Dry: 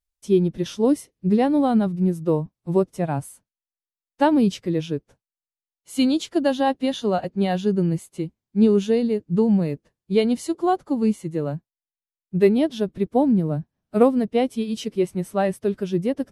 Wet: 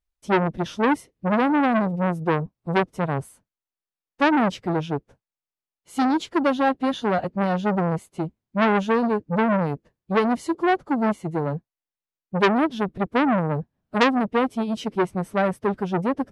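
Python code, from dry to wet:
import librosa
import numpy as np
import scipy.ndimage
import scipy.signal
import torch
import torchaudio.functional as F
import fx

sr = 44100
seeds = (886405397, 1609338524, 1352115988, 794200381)

y = fx.high_shelf(x, sr, hz=3900.0, db=-11.0)
y = fx.transformer_sat(y, sr, knee_hz=2000.0)
y = y * librosa.db_to_amplitude(3.0)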